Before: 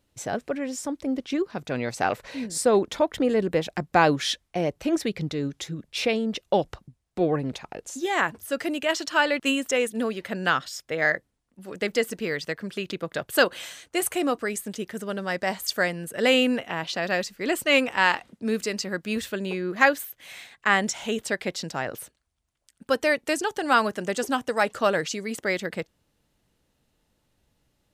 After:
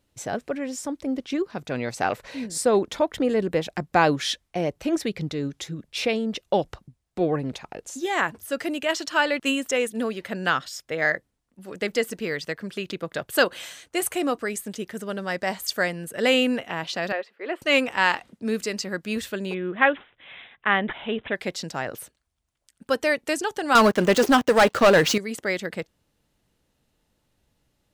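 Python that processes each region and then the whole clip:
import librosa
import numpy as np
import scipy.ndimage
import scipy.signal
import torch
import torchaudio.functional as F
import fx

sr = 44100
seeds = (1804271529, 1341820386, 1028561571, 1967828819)

y = fx.chain(x, sr, fx.highpass(hz=380.0, slope=24),
    fx.air_absorb(metres=470.0), at=(17.12, 17.62))
y = fx.chain(y, sr, fx.cheby1_lowpass(hz=5800.0, order=3),
    fx.resample_bad(factor=6, down='none', up='filtered'), at=(19.54, 21.36))
y = fx.chain(y, sr, fx.median_filter(points=5),
    fx.leveller(passes=3), at=(23.75, 25.18))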